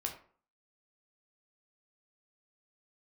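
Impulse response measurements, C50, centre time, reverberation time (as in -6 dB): 9.0 dB, 17 ms, 0.45 s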